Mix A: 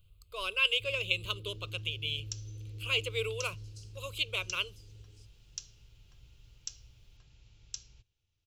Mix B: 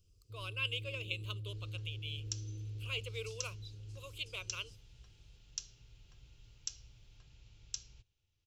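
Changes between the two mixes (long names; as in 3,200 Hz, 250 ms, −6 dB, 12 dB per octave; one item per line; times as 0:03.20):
speech −9.5 dB
first sound: entry −0.50 s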